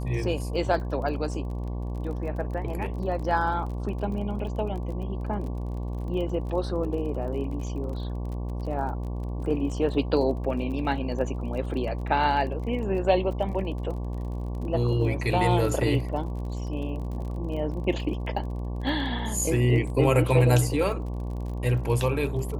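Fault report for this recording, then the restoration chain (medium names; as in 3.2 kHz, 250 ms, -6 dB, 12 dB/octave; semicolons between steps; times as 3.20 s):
buzz 60 Hz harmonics 19 -31 dBFS
crackle 34 per s -36 dBFS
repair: de-click; de-hum 60 Hz, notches 19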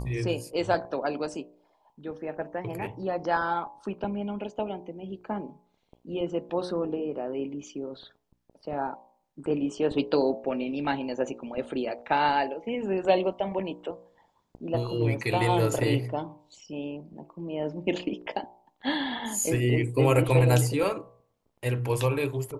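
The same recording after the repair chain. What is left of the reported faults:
nothing left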